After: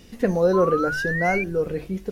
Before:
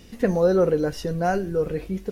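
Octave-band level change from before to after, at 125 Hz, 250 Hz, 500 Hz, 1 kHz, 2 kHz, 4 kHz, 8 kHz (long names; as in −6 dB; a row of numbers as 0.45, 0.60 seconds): −0.5, 0.0, 0.0, +3.0, +10.0, 0.0, 0.0 decibels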